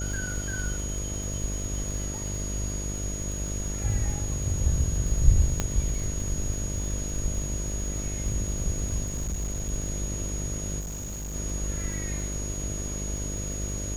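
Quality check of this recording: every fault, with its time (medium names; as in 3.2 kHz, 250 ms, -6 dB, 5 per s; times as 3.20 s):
buzz 50 Hz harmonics 13 -33 dBFS
crackle 49 per s -33 dBFS
whine 6.7 kHz -35 dBFS
5.60 s: pop -11 dBFS
9.03–9.70 s: clipped -26 dBFS
10.79–11.36 s: clipped -32 dBFS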